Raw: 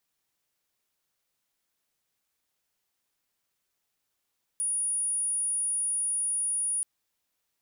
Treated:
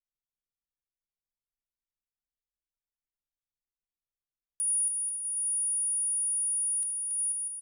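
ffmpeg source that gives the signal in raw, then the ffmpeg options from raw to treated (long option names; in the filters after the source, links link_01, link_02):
-f lavfi -i "sine=frequency=9670:duration=2.23:sample_rate=44100,volume=-7.94dB"
-filter_complex "[0:a]asplit=2[link_01][link_02];[link_02]aecho=0:1:280|490|647.5|765.6|854.2:0.631|0.398|0.251|0.158|0.1[link_03];[link_01][link_03]amix=inputs=2:normalize=0,anlmdn=0.0251,asplit=2[link_04][link_05];[link_05]aecho=0:1:75:0.299[link_06];[link_04][link_06]amix=inputs=2:normalize=0"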